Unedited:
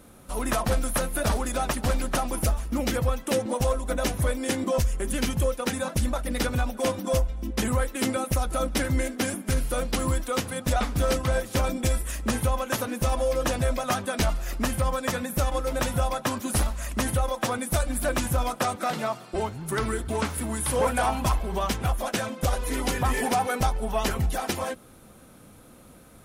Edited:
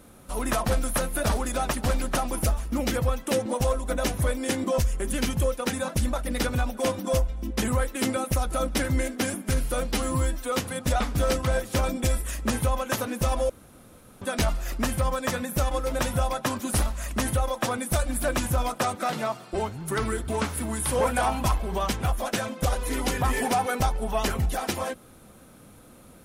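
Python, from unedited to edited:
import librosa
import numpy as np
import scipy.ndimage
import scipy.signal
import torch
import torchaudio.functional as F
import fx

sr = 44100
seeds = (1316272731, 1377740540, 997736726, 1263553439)

y = fx.edit(x, sr, fx.stretch_span(start_s=9.93, length_s=0.39, factor=1.5),
    fx.room_tone_fill(start_s=13.3, length_s=0.72), tone=tone)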